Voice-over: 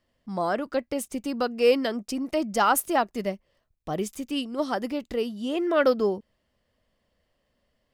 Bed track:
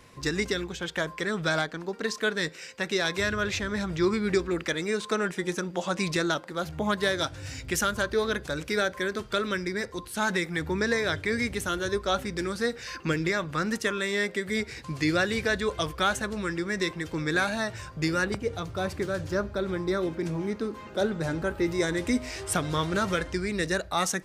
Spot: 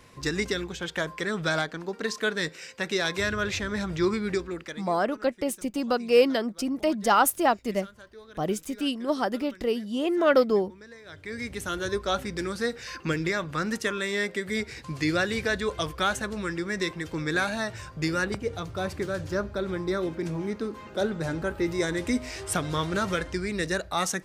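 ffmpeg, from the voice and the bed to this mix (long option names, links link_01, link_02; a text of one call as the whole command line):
ffmpeg -i stem1.wav -i stem2.wav -filter_complex "[0:a]adelay=4500,volume=1dB[link_01];[1:a]volume=21dB,afade=type=out:start_time=4.05:duration=0.9:silence=0.0841395,afade=type=in:start_time=11.05:duration=0.79:silence=0.0891251[link_02];[link_01][link_02]amix=inputs=2:normalize=0" out.wav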